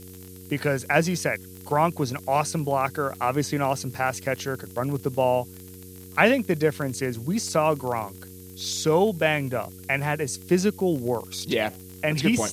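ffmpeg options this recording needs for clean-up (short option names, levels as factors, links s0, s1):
-af "adeclick=t=4,bandreject=f=92.4:t=h:w=4,bandreject=f=184.8:t=h:w=4,bandreject=f=277.2:t=h:w=4,bandreject=f=369.6:t=h:w=4,bandreject=f=462:t=h:w=4,afftdn=nr=26:nf=-43"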